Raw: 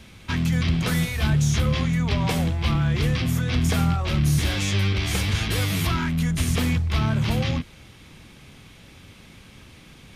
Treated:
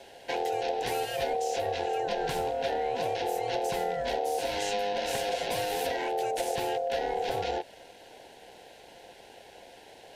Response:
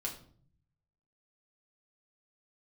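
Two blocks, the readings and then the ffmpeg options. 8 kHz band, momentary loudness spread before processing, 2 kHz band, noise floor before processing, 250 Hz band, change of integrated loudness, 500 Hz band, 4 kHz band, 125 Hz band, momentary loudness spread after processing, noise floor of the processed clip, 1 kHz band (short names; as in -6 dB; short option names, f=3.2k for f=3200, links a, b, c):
-8.0 dB, 2 LU, -8.0 dB, -48 dBFS, -18.0 dB, -7.5 dB, +5.5 dB, -7.5 dB, -27.5 dB, 20 LU, -52 dBFS, +4.5 dB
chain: -af "acompressor=threshold=-23dB:ratio=6,aeval=exprs='val(0)*sin(2*PI*610*n/s)':c=same,asuperstop=centerf=1200:order=4:qfactor=3.3,volume=-1dB"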